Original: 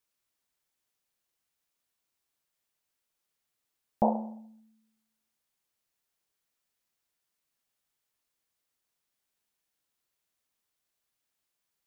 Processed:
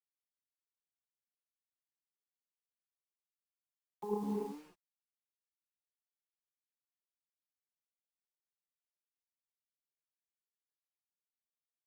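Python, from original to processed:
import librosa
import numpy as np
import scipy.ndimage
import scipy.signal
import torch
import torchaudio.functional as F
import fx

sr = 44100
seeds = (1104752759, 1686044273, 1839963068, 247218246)

y = fx.vocoder_arp(x, sr, chord='minor triad', root=49, every_ms=201)
y = fx.dereverb_blind(y, sr, rt60_s=0.96)
y = fx.double_bandpass(y, sr, hz=620.0, octaves=1.1)
y = fx.over_compress(y, sr, threshold_db=-49.0, ratio=-1.0)
y = fx.notch(y, sr, hz=620.0, q=15.0)
y = fx.quant_dither(y, sr, seeds[0], bits=12, dither='none')
y = fx.rev_gated(y, sr, seeds[1], gate_ms=310, shape='rising', drr_db=-1.5)
y = fx.record_warp(y, sr, rpm=33.33, depth_cents=160.0)
y = y * 10.0 ** (12.5 / 20.0)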